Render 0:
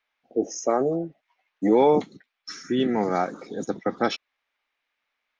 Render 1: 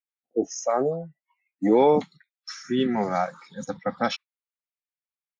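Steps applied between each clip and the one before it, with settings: spectral noise reduction 27 dB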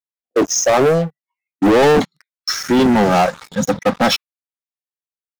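dynamic EQ 2200 Hz, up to -4 dB, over -43 dBFS, Q 1.2; sample leveller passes 5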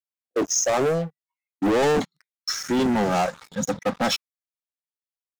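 dynamic EQ 7300 Hz, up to +6 dB, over -37 dBFS, Q 1.9; gain -8.5 dB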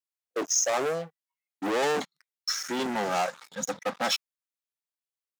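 HPF 660 Hz 6 dB/oct; gain -2 dB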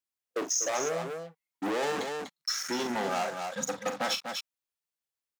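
loudspeakers at several distances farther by 14 m -9 dB, 84 m -9 dB; compressor 2.5:1, threshold -28 dBFS, peak gain reduction 5.5 dB

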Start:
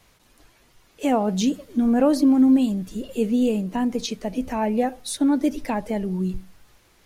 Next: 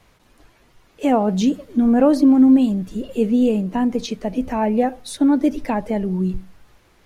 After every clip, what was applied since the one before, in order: high shelf 3400 Hz -8.5 dB; gain +4 dB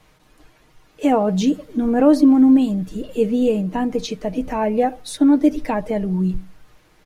comb 6.5 ms, depth 42%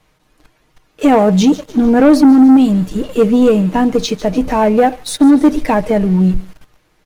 thin delay 0.148 s, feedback 51%, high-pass 3000 Hz, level -13.5 dB; sample leveller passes 2; gain +1.5 dB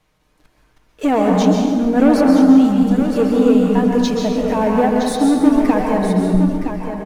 on a send: echo 0.966 s -8.5 dB; on the sum: plate-style reverb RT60 1.8 s, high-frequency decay 0.5×, pre-delay 0.115 s, DRR 0 dB; gain -6.5 dB

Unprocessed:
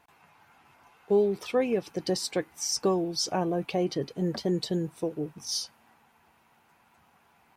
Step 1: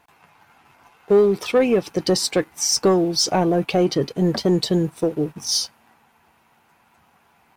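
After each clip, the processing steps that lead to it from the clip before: sample leveller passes 1; gain +6.5 dB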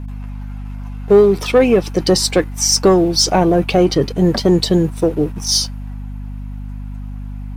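hum 50 Hz, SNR 11 dB; gain +5.5 dB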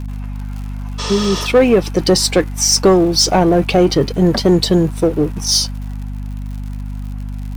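spectral repair 1.02–1.4, 400–9000 Hz after; crackle 100/s -31 dBFS; in parallel at -9 dB: overloaded stage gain 19.5 dB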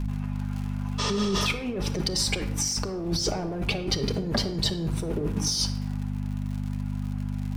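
high shelf 11000 Hz -7.5 dB; negative-ratio compressor -19 dBFS, ratio -1; shoebox room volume 2400 m³, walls furnished, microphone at 1.3 m; gain -8.5 dB

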